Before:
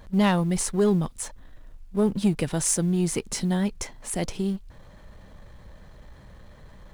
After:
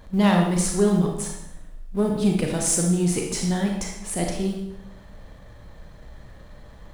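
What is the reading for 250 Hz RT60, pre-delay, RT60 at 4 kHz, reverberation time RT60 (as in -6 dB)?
1.0 s, 30 ms, 0.70 s, 0.80 s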